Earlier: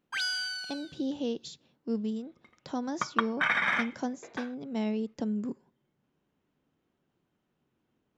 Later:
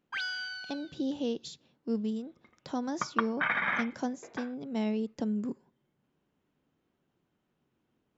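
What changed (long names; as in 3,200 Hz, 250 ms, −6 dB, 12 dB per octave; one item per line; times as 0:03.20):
first sound: add high-frequency loss of the air 180 metres
second sound: add high-frequency loss of the air 300 metres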